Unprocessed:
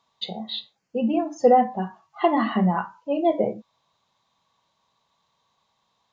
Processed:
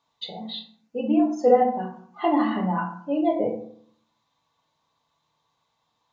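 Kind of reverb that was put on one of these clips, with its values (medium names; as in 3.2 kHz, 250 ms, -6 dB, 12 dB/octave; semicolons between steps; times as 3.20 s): FDN reverb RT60 0.59 s, low-frequency decay 1.3×, high-frequency decay 0.55×, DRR 0.5 dB; trim -5 dB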